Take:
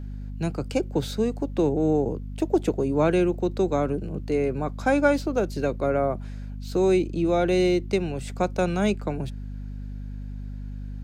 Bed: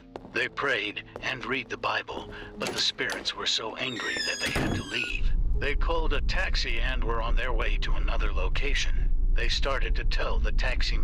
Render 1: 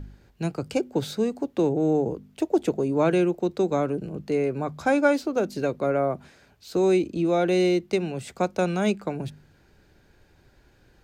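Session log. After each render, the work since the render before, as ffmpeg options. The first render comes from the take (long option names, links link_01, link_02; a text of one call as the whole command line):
ffmpeg -i in.wav -af "bandreject=frequency=50:width_type=h:width=4,bandreject=frequency=100:width_type=h:width=4,bandreject=frequency=150:width_type=h:width=4,bandreject=frequency=200:width_type=h:width=4,bandreject=frequency=250:width_type=h:width=4" out.wav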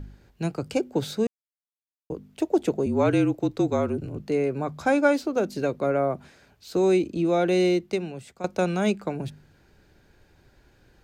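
ffmpeg -i in.wav -filter_complex "[0:a]asettb=1/sr,asplit=3[link_01][link_02][link_03];[link_01]atrim=end=2.864[link_04];[link_02]atrim=start=2.86:end=4.2,asetpts=PTS-STARTPTS,afade=type=in:duration=0.004:curve=qsin,afade=type=out:start_time=1.336:duration=0.004:curve=qsin,afreqshift=-41[link_05];[link_03]atrim=start=4.196[link_06];[link_04][link_05]acrossfade=duration=0.004:curve1=hsin:curve2=qsin[link_07];[link_07][link_06]acrossfade=duration=0.004:curve1=qsin:curve2=hsin,asplit=4[link_08][link_09][link_10][link_11];[link_08]atrim=end=1.27,asetpts=PTS-STARTPTS,afade=type=out:start_time=1.266:duration=0.004:curve=hsin[link_12];[link_09]atrim=start=1.27:end=2.1,asetpts=PTS-STARTPTS,volume=0[link_13];[link_10]atrim=start=2.1:end=8.44,asetpts=PTS-STARTPTS,afade=type=in:duration=0.004:curve=hsin,afade=type=out:start_time=5.62:duration=0.72:silence=0.211349[link_14];[link_11]atrim=start=8.44,asetpts=PTS-STARTPTS,afade=type=in:duration=0.004:curve=hsin:silence=0.211349[link_15];[link_12][link_13][link_14][link_15]concat=n=4:v=0:a=1" out.wav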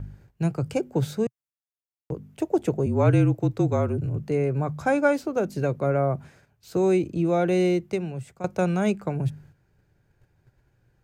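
ffmpeg -i in.wav -af "agate=range=-10dB:threshold=-54dB:ratio=16:detection=peak,equalizer=frequency=125:width_type=o:width=1:gain=11,equalizer=frequency=250:width_type=o:width=1:gain=-4,equalizer=frequency=4000:width_type=o:width=1:gain=-7" out.wav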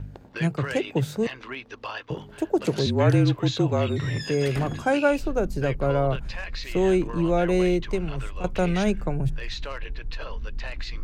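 ffmpeg -i in.wav -i bed.wav -filter_complex "[1:a]volume=-6.5dB[link_01];[0:a][link_01]amix=inputs=2:normalize=0" out.wav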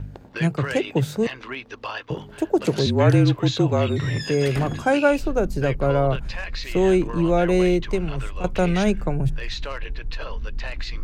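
ffmpeg -i in.wav -af "volume=3dB" out.wav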